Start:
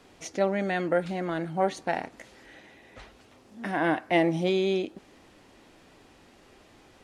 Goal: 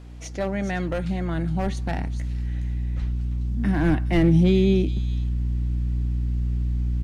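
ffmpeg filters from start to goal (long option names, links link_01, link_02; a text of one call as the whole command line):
ffmpeg -i in.wav -filter_complex "[0:a]acrossover=split=120|3000[link_01][link_02][link_03];[link_02]volume=19.5dB,asoftclip=hard,volume=-19.5dB[link_04];[link_03]aecho=1:1:417:0.447[link_05];[link_01][link_04][link_05]amix=inputs=3:normalize=0,aeval=exprs='val(0)+0.00891*(sin(2*PI*60*n/s)+sin(2*PI*2*60*n/s)/2+sin(2*PI*3*60*n/s)/3+sin(2*PI*4*60*n/s)/4+sin(2*PI*5*60*n/s)/5)':channel_layout=same,asubboost=boost=11.5:cutoff=190" out.wav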